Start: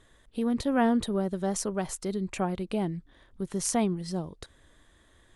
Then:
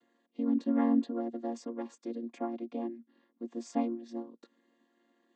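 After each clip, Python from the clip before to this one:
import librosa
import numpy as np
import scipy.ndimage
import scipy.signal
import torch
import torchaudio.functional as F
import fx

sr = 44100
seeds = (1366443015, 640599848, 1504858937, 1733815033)

y = fx.chord_vocoder(x, sr, chord='minor triad', root=58)
y = y * librosa.db_to_amplitude(-3.5)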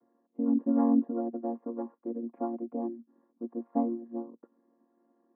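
y = scipy.signal.sosfilt(scipy.signal.cheby2(4, 70, 4900.0, 'lowpass', fs=sr, output='sos'), x)
y = y * librosa.db_to_amplitude(2.5)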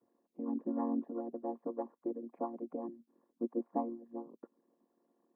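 y = fx.hpss(x, sr, part='harmonic', gain_db=-14)
y = y * librosa.db_to_amplitude(3.0)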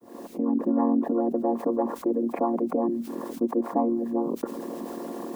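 y = fx.fade_in_head(x, sr, length_s=0.78)
y = fx.env_flatten(y, sr, amount_pct=70)
y = y * librosa.db_to_amplitude(9.0)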